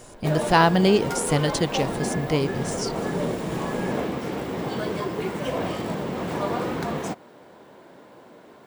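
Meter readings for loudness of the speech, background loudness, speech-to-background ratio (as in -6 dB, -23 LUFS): -23.0 LUFS, -28.5 LUFS, 5.5 dB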